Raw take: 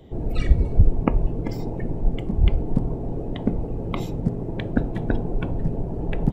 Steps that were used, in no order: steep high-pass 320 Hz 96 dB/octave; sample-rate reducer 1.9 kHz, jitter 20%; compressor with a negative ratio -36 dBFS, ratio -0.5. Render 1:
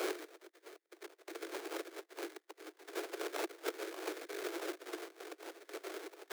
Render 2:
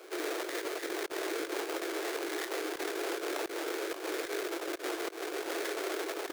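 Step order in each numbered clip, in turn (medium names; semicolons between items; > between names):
compressor with a negative ratio > sample-rate reducer > steep high-pass; sample-rate reducer > steep high-pass > compressor with a negative ratio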